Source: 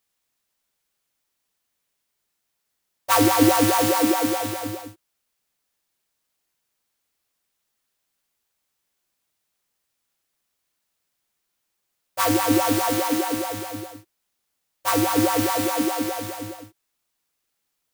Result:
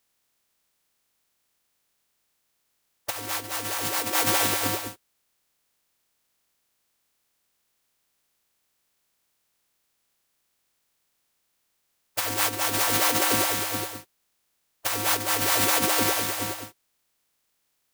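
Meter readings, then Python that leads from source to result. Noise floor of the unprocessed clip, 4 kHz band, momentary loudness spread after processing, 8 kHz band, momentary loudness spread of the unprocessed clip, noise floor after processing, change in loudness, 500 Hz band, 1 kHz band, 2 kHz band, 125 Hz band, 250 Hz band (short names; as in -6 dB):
-77 dBFS, +2.0 dB, 13 LU, +2.0 dB, 18 LU, -74 dBFS, -2.5 dB, -7.5 dB, -5.5 dB, +1.5 dB, -6.0 dB, -12.5 dB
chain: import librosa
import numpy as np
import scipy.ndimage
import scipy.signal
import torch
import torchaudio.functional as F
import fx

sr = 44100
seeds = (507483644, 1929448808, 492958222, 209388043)

y = fx.spec_clip(x, sr, under_db=17)
y = fx.over_compress(y, sr, threshold_db=-24.0, ratio=-0.5)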